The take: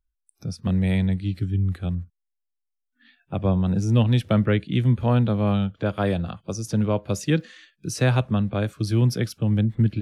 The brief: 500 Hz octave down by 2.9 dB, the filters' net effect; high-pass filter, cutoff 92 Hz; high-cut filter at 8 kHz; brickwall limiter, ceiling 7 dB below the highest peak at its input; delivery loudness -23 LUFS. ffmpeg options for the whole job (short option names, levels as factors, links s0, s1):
-af "highpass=92,lowpass=8000,equalizer=f=500:t=o:g=-3.5,volume=1.5,alimiter=limit=0.224:level=0:latency=1"